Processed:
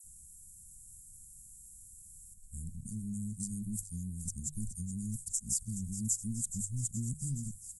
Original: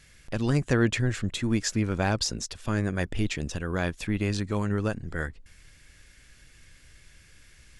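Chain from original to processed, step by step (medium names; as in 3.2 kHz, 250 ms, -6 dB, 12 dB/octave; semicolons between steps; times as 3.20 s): reverse the whole clip; Chebyshev band-stop 210–7800 Hz, order 4; treble shelf 3 kHz +12 dB; hum notches 50/100/150 Hz; in parallel at +2 dB: compression, threshold -35 dBFS, peak gain reduction 11.5 dB; on the sum: bass shelf 470 Hz -7 dB; phase dispersion lows, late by 41 ms, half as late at 2.1 kHz; on a send: feedback echo behind a high-pass 422 ms, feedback 77%, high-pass 1.9 kHz, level -11.5 dB; on the sum: resampled via 32 kHz; trim -5.5 dB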